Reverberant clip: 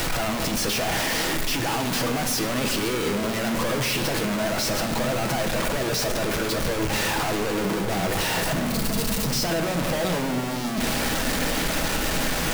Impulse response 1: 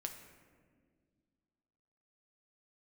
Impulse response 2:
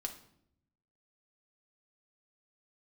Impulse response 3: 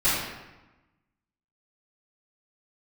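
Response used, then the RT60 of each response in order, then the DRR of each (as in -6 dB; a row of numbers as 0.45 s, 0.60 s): 1; 1.8 s, 0.70 s, 1.1 s; 3.5 dB, 3.0 dB, -16.0 dB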